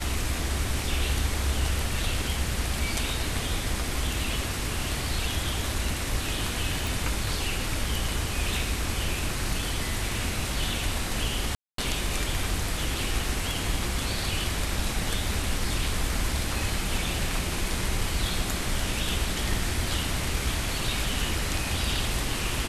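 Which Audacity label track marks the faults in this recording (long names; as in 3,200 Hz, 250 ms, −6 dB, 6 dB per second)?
6.870000	6.870000	click
11.550000	11.780000	drop-out 233 ms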